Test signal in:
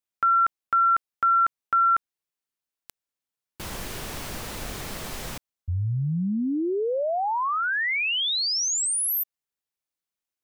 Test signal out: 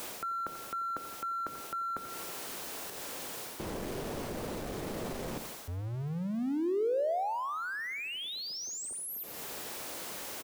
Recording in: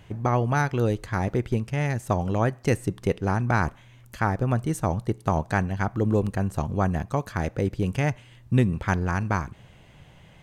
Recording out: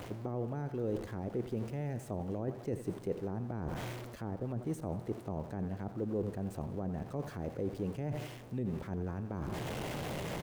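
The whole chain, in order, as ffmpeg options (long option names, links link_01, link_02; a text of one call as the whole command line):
ffmpeg -i in.wav -filter_complex "[0:a]aeval=exprs='val(0)+0.5*0.0299*sgn(val(0))':channel_layout=same,aecho=1:1:88|176|264|352|440:0.188|0.0923|0.0452|0.0222|0.0109,acrossover=split=460[link_01][link_02];[link_02]acompressor=threshold=-34dB:ratio=5:attack=0.55:release=384:knee=2.83:detection=peak[link_03];[link_01][link_03]amix=inputs=2:normalize=0,lowshelf=frequency=83:gain=-6.5,areverse,acompressor=threshold=-34dB:ratio=6:attack=2.5:release=670:knee=1:detection=peak,areverse,equalizer=frequency=510:width=0.52:gain=9.5,volume=-2.5dB" out.wav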